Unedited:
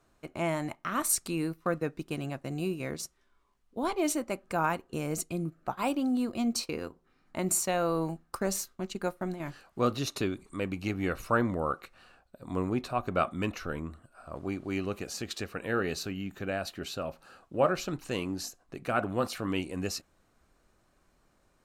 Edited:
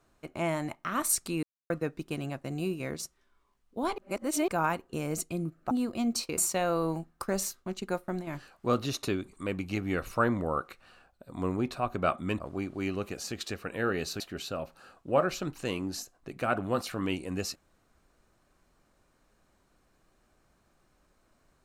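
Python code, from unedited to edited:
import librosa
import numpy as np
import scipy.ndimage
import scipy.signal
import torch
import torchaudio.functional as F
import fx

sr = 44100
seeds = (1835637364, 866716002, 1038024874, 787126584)

y = fx.edit(x, sr, fx.silence(start_s=1.43, length_s=0.27),
    fx.reverse_span(start_s=3.98, length_s=0.5),
    fx.cut(start_s=5.71, length_s=0.4),
    fx.cut(start_s=6.77, length_s=0.73),
    fx.cut(start_s=13.53, length_s=0.77),
    fx.cut(start_s=16.1, length_s=0.56), tone=tone)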